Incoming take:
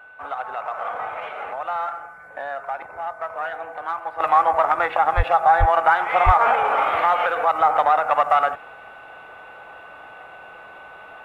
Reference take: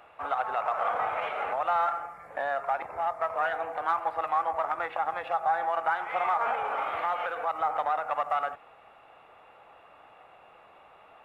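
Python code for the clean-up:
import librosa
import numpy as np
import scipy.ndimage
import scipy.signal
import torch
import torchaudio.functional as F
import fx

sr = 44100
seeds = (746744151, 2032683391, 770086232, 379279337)

y = fx.notch(x, sr, hz=1500.0, q=30.0)
y = fx.highpass(y, sr, hz=140.0, slope=24, at=(5.16, 5.28), fade=0.02)
y = fx.highpass(y, sr, hz=140.0, slope=24, at=(5.59, 5.71), fade=0.02)
y = fx.highpass(y, sr, hz=140.0, slope=24, at=(6.25, 6.37), fade=0.02)
y = fx.gain(y, sr, db=fx.steps((0.0, 0.0), (4.2, -11.0)))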